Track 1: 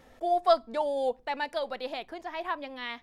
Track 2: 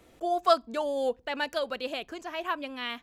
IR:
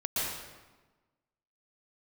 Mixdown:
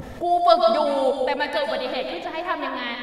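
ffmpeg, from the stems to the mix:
-filter_complex "[0:a]adynamicequalizer=threshold=0.0141:dfrequency=1500:dqfactor=0.7:tfrequency=1500:tqfactor=0.7:attack=5:release=100:ratio=0.375:range=2.5:mode=boostabove:tftype=highshelf,volume=0dB,asplit=2[a][b];[b]volume=-4.5dB[c];[1:a]volume=-16dB[d];[2:a]atrim=start_sample=2205[e];[c][e]afir=irnorm=-1:irlink=0[f];[a][d][f]amix=inputs=3:normalize=0,acompressor=mode=upward:threshold=-28dB:ratio=2.5,equalizer=f=120:t=o:w=2.3:g=9.5"

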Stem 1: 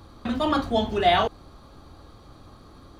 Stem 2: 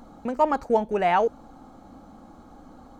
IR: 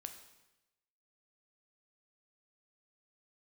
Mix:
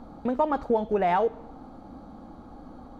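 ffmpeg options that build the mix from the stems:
-filter_complex "[0:a]asoftclip=type=tanh:threshold=-16dB,volume=-14dB,asplit=2[a][b];[b]volume=-12dB[c];[1:a]lowpass=f=1.2k:p=1,acompressor=threshold=-23dB:ratio=6,volume=-1,volume=1dB,asplit=3[d][e][f];[e]volume=-6dB[g];[f]apad=whole_len=132207[h];[a][h]sidechaincompress=threshold=-31dB:ratio=8:attack=16:release=543[i];[2:a]atrim=start_sample=2205[j];[c][g]amix=inputs=2:normalize=0[k];[k][j]afir=irnorm=-1:irlink=0[l];[i][d][l]amix=inputs=3:normalize=0"

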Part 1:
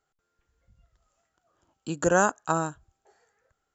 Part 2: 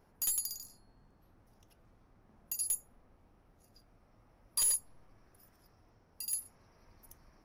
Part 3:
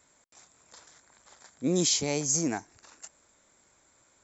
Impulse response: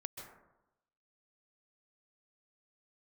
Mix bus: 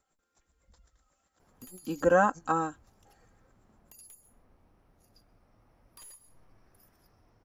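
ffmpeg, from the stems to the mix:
-filter_complex "[0:a]aecho=1:1:3.8:0.89,volume=-4dB[a];[1:a]acompressor=threshold=-40dB:ratio=6,adelay=1400,volume=-1.5dB,asplit=2[b][c];[c]volume=-8.5dB[d];[2:a]lowshelf=f=460:g=11,acompressor=threshold=-30dB:ratio=6,aeval=exprs='val(0)*pow(10,-25*(0.5-0.5*cos(2*PI*8*n/s))/20)':c=same,volume=-14.5dB[e];[3:a]atrim=start_sample=2205[f];[d][f]afir=irnorm=-1:irlink=0[g];[a][b][e][g]amix=inputs=4:normalize=0,acrossover=split=2700[h][i];[i]acompressor=threshold=-50dB:ratio=4:attack=1:release=60[j];[h][j]amix=inputs=2:normalize=0"

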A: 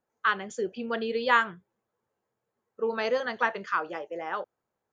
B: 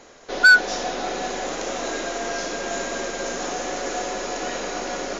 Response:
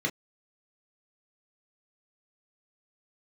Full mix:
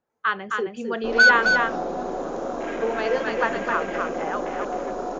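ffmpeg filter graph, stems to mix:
-filter_complex "[0:a]aemphasis=mode=reproduction:type=cd,volume=2dB,asplit=2[a][b];[b]volume=-4dB[c];[1:a]afwtdn=0.0282,lowshelf=f=410:g=4.5,adelay=750,volume=-2.5dB,asplit=2[d][e];[e]volume=-6dB[f];[c][f]amix=inputs=2:normalize=0,aecho=0:1:263:1[g];[a][d][g]amix=inputs=3:normalize=0"

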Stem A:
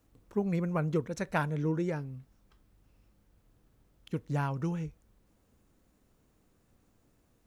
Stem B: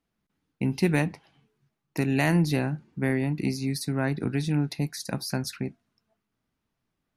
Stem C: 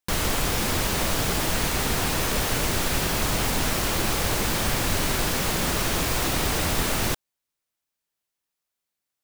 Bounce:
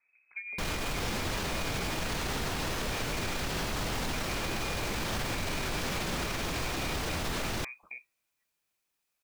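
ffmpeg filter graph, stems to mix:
-filter_complex "[0:a]volume=-6dB[a];[1:a]adelay=2300,volume=-13dB[b];[2:a]alimiter=limit=-20dB:level=0:latency=1,acrossover=split=6700[c][d];[d]acompressor=threshold=-43dB:ratio=4:attack=1:release=60[e];[c][e]amix=inputs=2:normalize=0,adelay=500,volume=2dB[f];[a][b]amix=inputs=2:normalize=0,lowpass=f=2.2k:t=q:w=0.5098,lowpass=f=2.2k:t=q:w=0.6013,lowpass=f=2.2k:t=q:w=0.9,lowpass=f=2.2k:t=q:w=2.563,afreqshift=-2600,acompressor=threshold=-37dB:ratio=6,volume=0dB[g];[f][g]amix=inputs=2:normalize=0,alimiter=limit=-24dB:level=0:latency=1:release=65"

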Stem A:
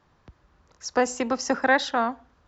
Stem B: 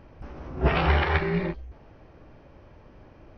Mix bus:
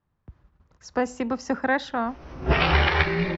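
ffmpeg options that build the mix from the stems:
-filter_complex "[0:a]agate=range=-14dB:threshold=-59dB:ratio=16:detection=peak,bass=f=250:g=9,treble=f=4k:g=-8,volume=-3.5dB,asplit=2[a][b];[1:a]highshelf=f=2.2k:g=10.5,adelay=1850,volume=0.5dB[c];[b]apad=whole_len=230222[d];[c][d]sidechaincompress=threshold=-30dB:ratio=8:attack=32:release=568[e];[a][e]amix=inputs=2:normalize=0"

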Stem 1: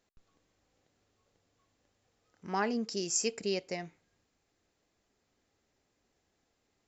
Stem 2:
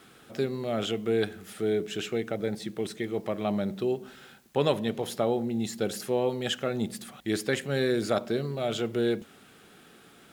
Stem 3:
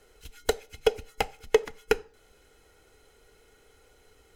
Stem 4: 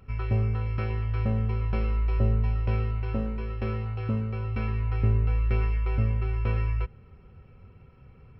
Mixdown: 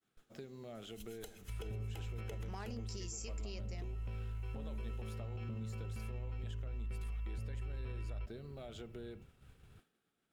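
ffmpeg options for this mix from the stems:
-filter_complex "[0:a]volume=-2.5dB[a];[1:a]acompressor=threshold=-34dB:ratio=6,volume=-12.5dB[b];[2:a]adelay=750,volume=-13.5dB[c];[3:a]adelay=1400,volume=-10dB[d];[a][c][d]amix=inputs=3:normalize=0,aexciter=amount=2.1:drive=4.5:freq=2.6k,acompressor=threshold=-38dB:ratio=3,volume=0dB[e];[b][e]amix=inputs=2:normalize=0,agate=range=-33dB:threshold=-55dB:ratio=3:detection=peak,lowshelf=f=100:g=7,alimiter=level_in=11.5dB:limit=-24dB:level=0:latency=1:release=45,volume=-11.5dB"

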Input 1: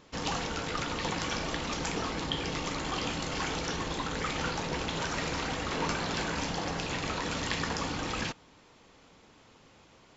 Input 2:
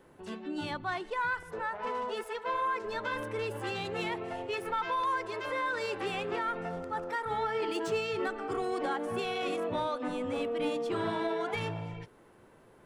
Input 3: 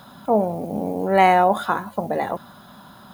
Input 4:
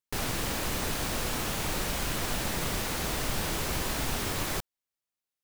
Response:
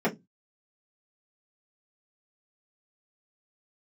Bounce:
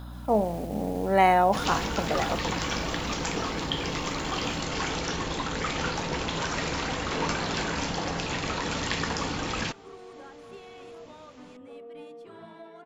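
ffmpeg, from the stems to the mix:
-filter_complex "[0:a]adelay=1400,volume=3dB[a];[1:a]adelay=1350,volume=-16.5dB,asplit=2[b][c];[c]volume=-18.5dB[d];[2:a]aeval=exprs='val(0)+0.02*(sin(2*PI*60*n/s)+sin(2*PI*2*60*n/s)/2+sin(2*PI*3*60*n/s)/3+sin(2*PI*4*60*n/s)/4+sin(2*PI*5*60*n/s)/5)':c=same,volume=-5dB,asplit=2[e][f];[3:a]asoftclip=type=tanh:threshold=-31.5dB,volume=-14.5dB[g];[f]apad=whole_len=239580[h];[g][h]sidechaingate=range=-10dB:threshold=-33dB:ratio=16:detection=peak[i];[4:a]atrim=start_sample=2205[j];[d][j]afir=irnorm=-1:irlink=0[k];[a][b][e][i][k]amix=inputs=5:normalize=0"

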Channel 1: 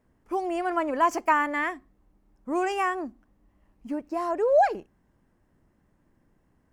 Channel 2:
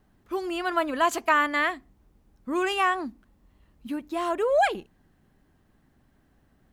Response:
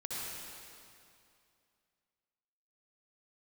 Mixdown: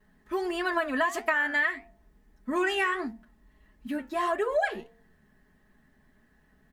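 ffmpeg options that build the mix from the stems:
-filter_complex "[0:a]volume=-3.5dB[a];[1:a]aecho=1:1:4.7:0.86,bandreject=f=228.1:t=h:w=4,bandreject=f=456.2:t=h:w=4,bandreject=f=684.3:t=h:w=4,bandreject=f=912.4:t=h:w=4,adelay=2.6,volume=1dB[b];[a][b]amix=inputs=2:normalize=0,equalizer=f=1.8k:w=6.9:g=15,flanger=delay=8.4:depth=7.4:regen=69:speed=1.6:shape=triangular,acompressor=threshold=-23dB:ratio=6"

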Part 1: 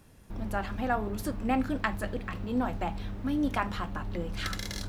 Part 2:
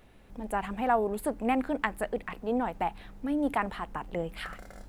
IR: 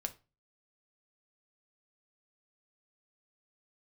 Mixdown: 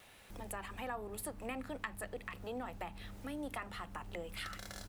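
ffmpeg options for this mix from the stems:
-filter_complex "[0:a]volume=-12.5dB[a];[1:a]highpass=590,highshelf=f=2.5k:g=10.5,acompressor=threshold=-46dB:ratio=2,adelay=2.2,volume=0.5dB[b];[a][b]amix=inputs=2:normalize=0,acompressor=threshold=-44dB:ratio=1.5"

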